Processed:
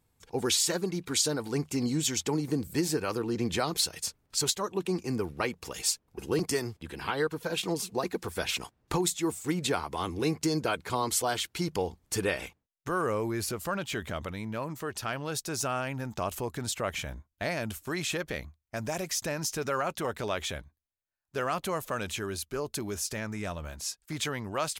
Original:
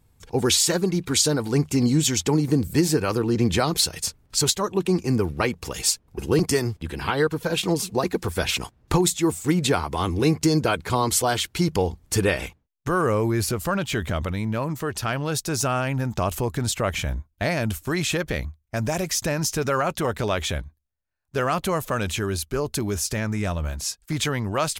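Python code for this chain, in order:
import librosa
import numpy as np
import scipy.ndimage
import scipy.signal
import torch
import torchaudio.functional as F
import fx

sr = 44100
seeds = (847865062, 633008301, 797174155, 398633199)

y = fx.low_shelf(x, sr, hz=150.0, db=-9.5)
y = y * 10.0 ** (-6.5 / 20.0)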